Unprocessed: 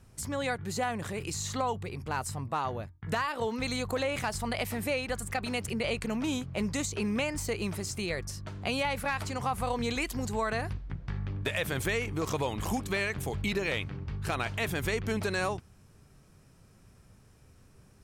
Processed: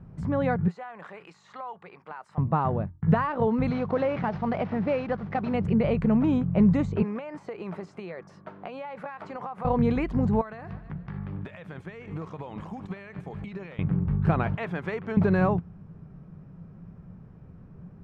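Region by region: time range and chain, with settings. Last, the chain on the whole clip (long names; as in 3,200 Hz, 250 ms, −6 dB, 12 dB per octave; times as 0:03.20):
0:00.68–0:02.38: high-pass filter 950 Hz + downward compressor 5 to 1, threshold −39 dBFS
0:03.70–0:05.54: variable-slope delta modulation 32 kbit/s + high-pass filter 230 Hz 6 dB per octave
0:07.02–0:09.65: high-pass filter 490 Hz + downward compressor 10 to 1, threshold −36 dBFS
0:10.41–0:13.79: spectral tilt +3 dB per octave + repeating echo 152 ms, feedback 44%, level −21 dB + downward compressor 8 to 1, threshold −40 dBFS
0:14.55–0:15.17: high-pass filter 270 Hz 6 dB per octave + low-shelf EQ 460 Hz −10.5 dB
whole clip: low-pass filter 1,200 Hz 12 dB per octave; parametric band 170 Hz +15 dB 0.5 octaves; level +6.5 dB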